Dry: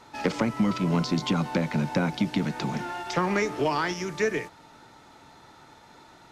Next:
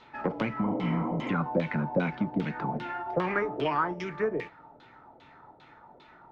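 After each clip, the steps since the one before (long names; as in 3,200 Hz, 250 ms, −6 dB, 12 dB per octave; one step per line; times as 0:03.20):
healed spectral selection 0:00.68–0:01.27, 220–6,100 Hz before
auto-filter low-pass saw down 2.5 Hz 520–3,600 Hz
flanger 0.49 Hz, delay 4.6 ms, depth 3.8 ms, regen −72%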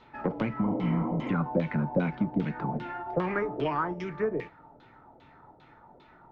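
spectral tilt −1.5 dB per octave
level −2 dB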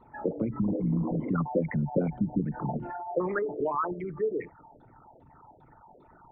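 spectral envelope exaggerated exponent 3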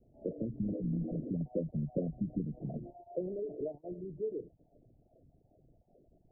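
Butterworth low-pass 690 Hz 96 dB per octave
low-shelf EQ 70 Hz +7.5 dB
level −8 dB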